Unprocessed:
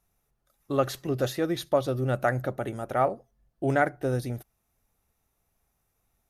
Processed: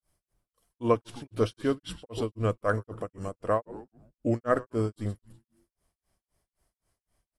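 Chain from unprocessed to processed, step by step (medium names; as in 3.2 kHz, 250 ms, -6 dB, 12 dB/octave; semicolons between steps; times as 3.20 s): frequency-shifting echo 109 ms, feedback 43%, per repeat -130 Hz, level -15 dB; granulator 201 ms, grains 4.5 per s, spray 25 ms, pitch spread up and down by 0 st; wide varispeed 0.852×; trim +1.5 dB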